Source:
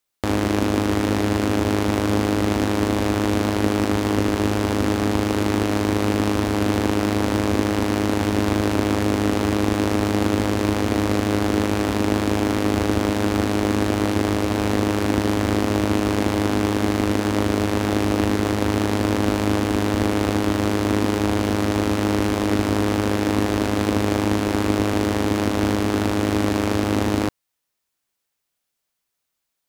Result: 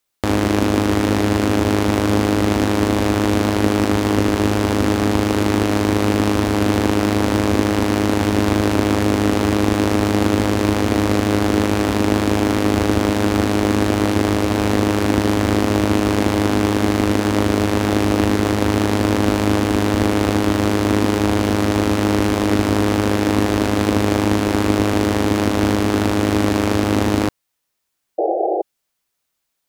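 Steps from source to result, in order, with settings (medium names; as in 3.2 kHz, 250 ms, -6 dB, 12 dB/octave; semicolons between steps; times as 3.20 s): painted sound noise, 28.18–28.62 s, 320–830 Hz -22 dBFS; trim +3.5 dB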